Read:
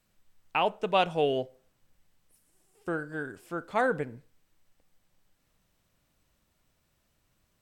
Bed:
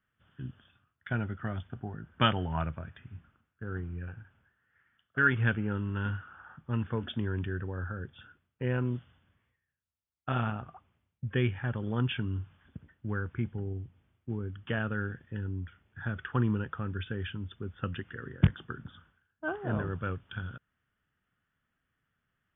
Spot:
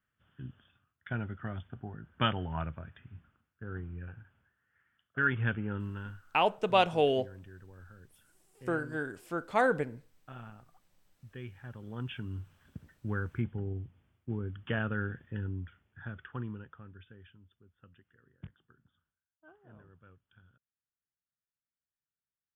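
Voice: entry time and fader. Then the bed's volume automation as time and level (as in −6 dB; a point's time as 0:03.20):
5.80 s, 0.0 dB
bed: 0:05.85 −3.5 dB
0:06.27 −16.5 dB
0:11.37 −16.5 dB
0:12.78 −0.5 dB
0:15.44 −0.5 dB
0:17.70 −24.5 dB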